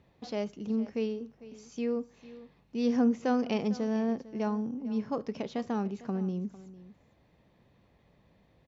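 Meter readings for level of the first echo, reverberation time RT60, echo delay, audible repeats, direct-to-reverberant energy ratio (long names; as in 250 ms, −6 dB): −17.5 dB, no reverb audible, 451 ms, 1, no reverb audible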